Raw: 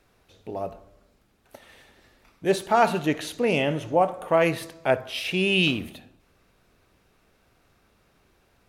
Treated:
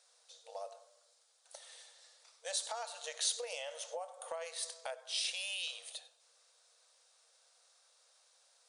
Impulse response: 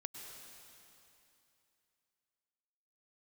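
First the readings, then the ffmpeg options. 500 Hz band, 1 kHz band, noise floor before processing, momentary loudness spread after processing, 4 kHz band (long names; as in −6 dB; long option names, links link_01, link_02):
−21.0 dB, −21.5 dB, −64 dBFS, 20 LU, −8.0 dB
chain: -filter_complex "[1:a]atrim=start_sample=2205,atrim=end_sample=4410[link_01];[0:a][link_01]afir=irnorm=-1:irlink=0,afftfilt=real='re*between(b*sr/4096,460,10000)':imag='im*between(b*sr/4096,460,10000)':win_size=4096:overlap=0.75,acompressor=threshold=-36dB:ratio=6,aexciter=amount=7.2:drive=2.9:freq=3600,volume=-4.5dB"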